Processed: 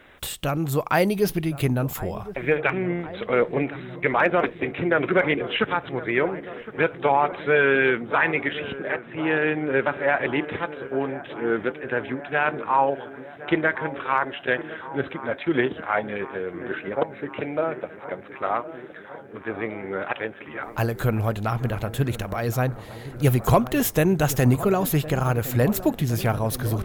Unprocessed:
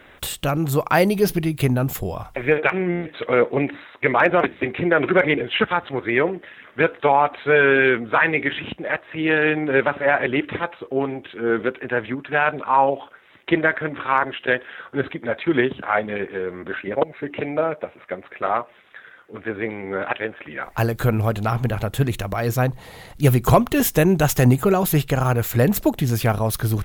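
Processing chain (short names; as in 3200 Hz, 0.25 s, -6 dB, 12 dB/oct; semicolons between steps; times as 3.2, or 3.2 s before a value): 8.93–9.86 high shelf 4100 Hz -9.5 dB; dark delay 1.063 s, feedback 73%, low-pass 1500 Hz, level -15 dB; gain -3.5 dB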